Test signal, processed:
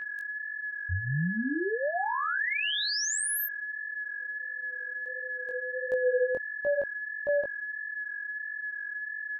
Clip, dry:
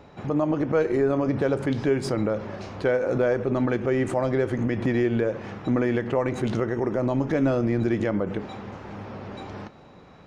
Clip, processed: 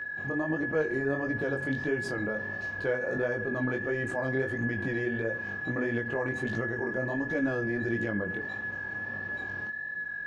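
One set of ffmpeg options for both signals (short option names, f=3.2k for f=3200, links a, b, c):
-af "aeval=exprs='val(0)+0.0501*sin(2*PI*1700*n/s)':c=same,flanger=delay=17:depth=6.1:speed=1.5,volume=-5dB"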